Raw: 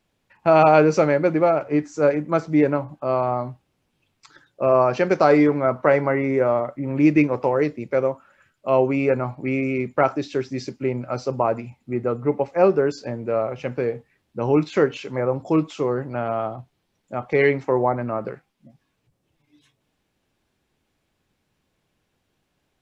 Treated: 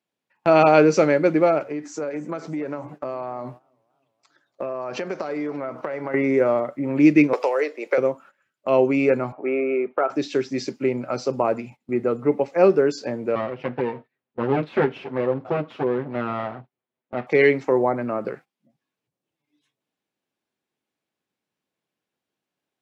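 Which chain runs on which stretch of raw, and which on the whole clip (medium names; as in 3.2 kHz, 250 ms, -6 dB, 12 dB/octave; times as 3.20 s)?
1.70–6.14 s: compression 10:1, threshold -27 dBFS + modulated delay 292 ms, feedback 54%, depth 121 cents, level -20.5 dB
7.33–7.98 s: high-pass 450 Hz 24 dB/octave + three bands compressed up and down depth 100%
9.32–10.10 s: cabinet simulation 400–2400 Hz, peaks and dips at 410 Hz +7 dB, 690 Hz +6 dB, 1.3 kHz +6 dB, 2 kHz -7 dB + compression 2:1, threshold -21 dBFS
13.35–17.27 s: comb filter that takes the minimum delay 7.9 ms + distance through air 370 m
whole clip: high-pass 200 Hz 12 dB/octave; gate -44 dBFS, range -15 dB; dynamic bell 920 Hz, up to -6 dB, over -32 dBFS, Q 0.91; trim +3.5 dB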